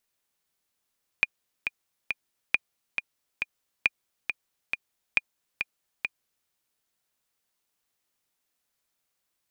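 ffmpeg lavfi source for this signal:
ffmpeg -f lavfi -i "aevalsrc='pow(10,(-7-7*gte(mod(t,3*60/137),60/137))/20)*sin(2*PI*2430*mod(t,60/137))*exp(-6.91*mod(t,60/137)/0.03)':duration=5.25:sample_rate=44100" out.wav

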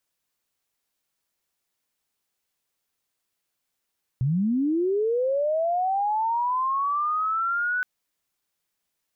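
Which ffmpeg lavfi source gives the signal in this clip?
ffmpeg -f lavfi -i "aevalsrc='pow(10,(-20-2.5*t/3.62)/20)*sin(2*PI*(120*t+1380*t*t/(2*3.62)))':duration=3.62:sample_rate=44100" out.wav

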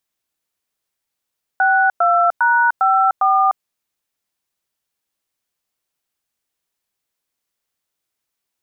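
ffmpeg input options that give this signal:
ffmpeg -f lavfi -i "aevalsrc='0.2*clip(min(mod(t,0.403),0.3-mod(t,0.403))/0.002,0,1)*(eq(floor(t/0.403),0)*(sin(2*PI*770*mod(t,0.403))+sin(2*PI*1477*mod(t,0.403)))+eq(floor(t/0.403),1)*(sin(2*PI*697*mod(t,0.403))+sin(2*PI*1336*mod(t,0.403)))+eq(floor(t/0.403),2)*(sin(2*PI*941*mod(t,0.403))+sin(2*PI*1477*mod(t,0.403)))+eq(floor(t/0.403),3)*(sin(2*PI*770*mod(t,0.403))+sin(2*PI*1336*mod(t,0.403)))+eq(floor(t/0.403),4)*(sin(2*PI*770*mod(t,0.403))+sin(2*PI*1209*mod(t,0.403))))':duration=2.015:sample_rate=44100" out.wav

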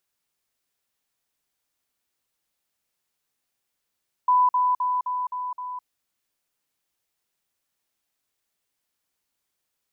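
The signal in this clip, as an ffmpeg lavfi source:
ffmpeg -f lavfi -i "aevalsrc='pow(10,(-15-3*floor(t/0.26))/20)*sin(2*PI*997*t)*clip(min(mod(t,0.26),0.21-mod(t,0.26))/0.005,0,1)':duration=1.56:sample_rate=44100" out.wav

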